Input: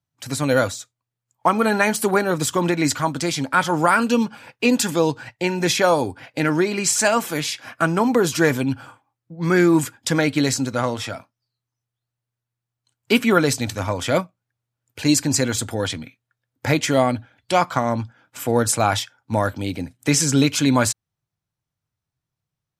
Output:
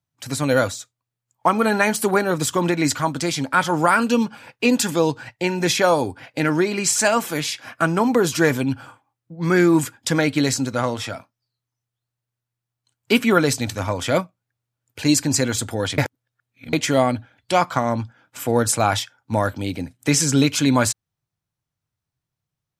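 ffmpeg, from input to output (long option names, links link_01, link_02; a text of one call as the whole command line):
ffmpeg -i in.wav -filter_complex "[0:a]asplit=3[link_01][link_02][link_03];[link_01]atrim=end=15.982[link_04];[link_02]atrim=start=15.978:end=16.732,asetpts=PTS-STARTPTS,areverse[link_05];[link_03]atrim=start=16.728[link_06];[link_04][link_05]acrossfade=duration=0.004:curve1=hsin:curve2=hsin[link_07];[link_07][link_06]acrossfade=duration=0.004:curve1=hsin:curve2=hsin" out.wav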